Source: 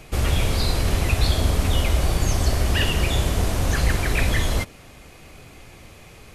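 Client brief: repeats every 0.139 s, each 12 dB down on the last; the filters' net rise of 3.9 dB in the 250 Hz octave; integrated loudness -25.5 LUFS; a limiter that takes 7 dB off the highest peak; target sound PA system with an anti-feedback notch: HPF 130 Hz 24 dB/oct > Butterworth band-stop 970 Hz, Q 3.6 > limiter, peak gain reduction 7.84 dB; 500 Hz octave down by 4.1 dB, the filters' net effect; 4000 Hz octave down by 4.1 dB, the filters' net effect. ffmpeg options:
-af "equalizer=f=250:t=o:g=7.5,equalizer=f=500:t=o:g=-8,equalizer=f=4k:t=o:g=-5.5,alimiter=limit=-14dB:level=0:latency=1,highpass=f=130:w=0.5412,highpass=f=130:w=1.3066,asuperstop=centerf=970:order=8:qfactor=3.6,aecho=1:1:139|278|417:0.251|0.0628|0.0157,volume=6.5dB,alimiter=limit=-16.5dB:level=0:latency=1"

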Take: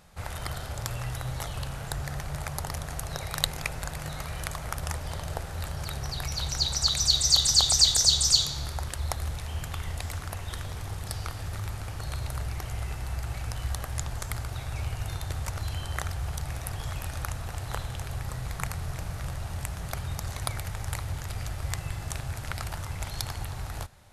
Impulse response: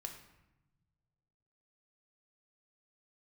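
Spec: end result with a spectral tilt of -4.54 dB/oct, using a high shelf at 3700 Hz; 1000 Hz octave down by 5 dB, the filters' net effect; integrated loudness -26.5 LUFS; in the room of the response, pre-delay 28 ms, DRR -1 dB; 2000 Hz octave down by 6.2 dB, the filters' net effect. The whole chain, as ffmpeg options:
-filter_complex "[0:a]equalizer=f=1k:t=o:g=-5,equalizer=f=2k:t=o:g=-4,highshelf=f=3.7k:g=-8.5,asplit=2[a][b];[1:a]atrim=start_sample=2205,adelay=28[c];[b][c]afir=irnorm=-1:irlink=0,volume=4dB[d];[a][d]amix=inputs=2:normalize=0,volume=3dB"

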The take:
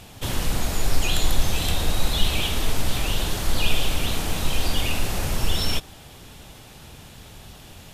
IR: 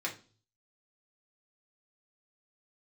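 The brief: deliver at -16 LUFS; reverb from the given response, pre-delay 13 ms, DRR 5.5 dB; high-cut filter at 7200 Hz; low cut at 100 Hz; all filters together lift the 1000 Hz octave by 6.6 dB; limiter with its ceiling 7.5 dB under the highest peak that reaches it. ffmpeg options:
-filter_complex "[0:a]highpass=100,lowpass=7.2k,equalizer=f=1k:t=o:g=8.5,alimiter=limit=-20dB:level=0:latency=1,asplit=2[a][b];[1:a]atrim=start_sample=2205,adelay=13[c];[b][c]afir=irnorm=-1:irlink=0,volume=-9.5dB[d];[a][d]amix=inputs=2:normalize=0,volume=12dB"

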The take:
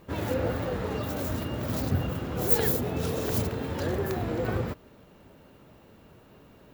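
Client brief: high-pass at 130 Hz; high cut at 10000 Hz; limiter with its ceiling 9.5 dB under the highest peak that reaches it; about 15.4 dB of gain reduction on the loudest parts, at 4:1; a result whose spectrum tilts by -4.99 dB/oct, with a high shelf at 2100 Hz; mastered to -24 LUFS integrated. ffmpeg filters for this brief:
-af "highpass=130,lowpass=10k,highshelf=f=2.1k:g=5,acompressor=threshold=-43dB:ratio=4,volume=23.5dB,alimiter=limit=-13.5dB:level=0:latency=1"

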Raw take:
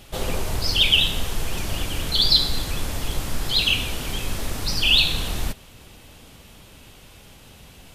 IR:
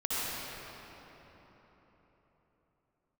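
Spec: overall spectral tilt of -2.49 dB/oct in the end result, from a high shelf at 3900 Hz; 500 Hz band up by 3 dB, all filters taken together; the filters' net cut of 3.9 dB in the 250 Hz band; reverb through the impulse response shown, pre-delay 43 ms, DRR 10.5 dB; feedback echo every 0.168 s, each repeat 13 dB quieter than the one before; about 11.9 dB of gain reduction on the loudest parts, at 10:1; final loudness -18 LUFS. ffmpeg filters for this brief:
-filter_complex "[0:a]equalizer=f=250:t=o:g=-7.5,equalizer=f=500:t=o:g=5.5,highshelf=f=3.9k:g=5.5,acompressor=threshold=-22dB:ratio=10,aecho=1:1:168|336|504:0.224|0.0493|0.0108,asplit=2[a][b];[1:a]atrim=start_sample=2205,adelay=43[c];[b][c]afir=irnorm=-1:irlink=0,volume=-19.5dB[d];[a][d]amix=inputs=2:normalize=0,volume=8.5dB"

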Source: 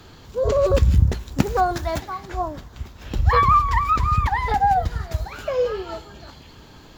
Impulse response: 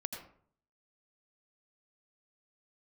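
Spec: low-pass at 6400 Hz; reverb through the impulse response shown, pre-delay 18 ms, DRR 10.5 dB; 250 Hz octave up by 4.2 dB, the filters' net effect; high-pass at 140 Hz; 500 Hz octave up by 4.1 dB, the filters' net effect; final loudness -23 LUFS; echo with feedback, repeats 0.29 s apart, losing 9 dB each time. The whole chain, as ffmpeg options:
-filter_complex "[0:a]highpass=140,lowpass=6.4k,equalizer=f=250:t=o:g=5.5,equalizer=f=500:t=o:g=3.5,aecho=1:1:290|580|870|1160:0.355|0.124|0.0435|0.0152,asplit=2[a][b];[1:a]atrim=start_sample=2205,adelay=18[c];[b][c]afir=irnorm=-1:irlink=0,volume=-10.5dB[d];[a][d]amix=inputs=2:normalize=0,volume=-3.5dB"

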